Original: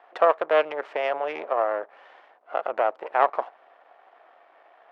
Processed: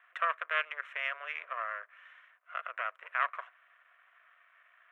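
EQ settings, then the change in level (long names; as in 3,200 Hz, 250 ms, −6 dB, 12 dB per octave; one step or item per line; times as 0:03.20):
high-pass filter 920 Hz 24 dB per octave
phaser with its sweep stopped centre 2,000 Hz, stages 4
0.0 dB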